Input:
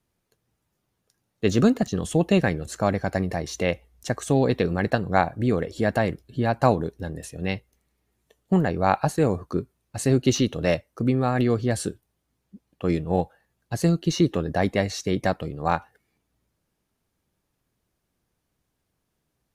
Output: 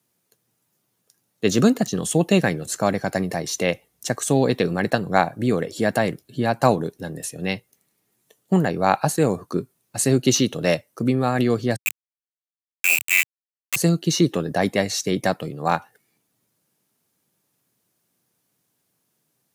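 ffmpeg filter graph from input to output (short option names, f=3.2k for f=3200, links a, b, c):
-filter_complex "[0:a]asettb=1/sr,asplit=3[a][b][c];[a]atrim=end=11.764[d];[b]atrim=start=11.76:end=13.76,asetpts=PTS-STARTPTS,afade=t=in:d=0.004:c=qsin,afade=t=out:st=1.996:d=0.004:c=qsin,equalizer=f=220:w=7.9:g=-3,lowpass=f=2.4k:t=q:w=0.5098,lowpass=f=2.4k:t=q:w=0.6013,lowpass=f=2.4k:t=q:w=0.9,lowpass=f=2.4k:t=q:w=2.563,afreqshift=-2800,aeval=exprs='val(0)*gte(abs(val(0)),0.0708)':c=same[e];[c]atrim=start=13.756[f];[d][e]acrossfade=d=0.004:c1=hsin:c2=qsin[g];[g][f]acrossfade=d=0.004:c1=qsin:c2=hsin,highpass=f=120:w=0.5412,highpass=f=120:w=1.3066,highshelf=f=5.6k:g=11.5,volume=2dB"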